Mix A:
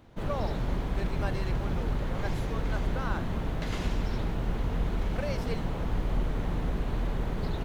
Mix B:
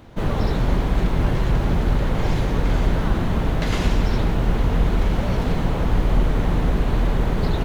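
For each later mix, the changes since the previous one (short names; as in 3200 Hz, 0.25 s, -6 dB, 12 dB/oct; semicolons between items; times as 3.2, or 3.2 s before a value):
background +10.5 dB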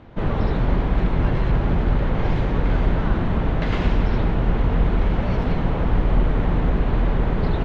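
speech: add tilt +2 dB/oct; master: add LPF 2900 Hz 12 dB/oct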